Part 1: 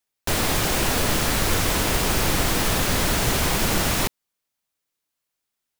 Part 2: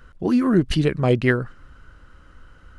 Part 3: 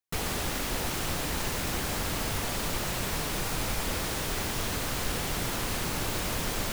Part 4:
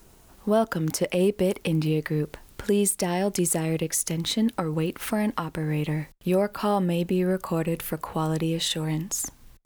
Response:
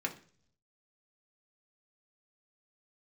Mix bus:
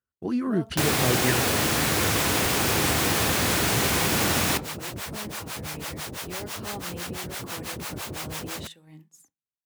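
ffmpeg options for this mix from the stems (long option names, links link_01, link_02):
-filter_complex "[0:a]adelay=500,volume=-2.5dB,asplit=2[link_01][link_02];[link_02]volume=-12.5dB[link_03];[1:a]volume=-8dB[link_04];[2:a]acrossover=split=550[link_05][link_06];[link_05]aeval=exprs='val(0)*(1-1/2+1/2*cos(2*PI*6*n/s))':channel_layout=same[link_07];[link_06]aeval=exprs='val(0)*(1-1/2-1/2*cos(2*PI*6*n/s))':channel_layout=same[link_08];[link_07][link_08]amix=inputs=2:normalize=0,adelay=1950,volume=1.5dB[link_09];[3:a]volume=-19dB,asplit=2[link_10][link_11];[link_11]volume=-7dB[link_12];[4:a]atrim=start_sample=2205[link_13];[link_03][link_12]amix=inputs=2:normalize=0[link_14];[link_14][link_13]afir=irnorm=-1:irlink=0[link_15];[link_01][link_04][link_09][link_10][link_15]amix=inputs=5:normalize=0,highpass=frequency=69:width=0.5412,highpass=frequency=69:width=1.3066,agate=range=-33dB:threshold=-36dB:ratio=3:detection=peak"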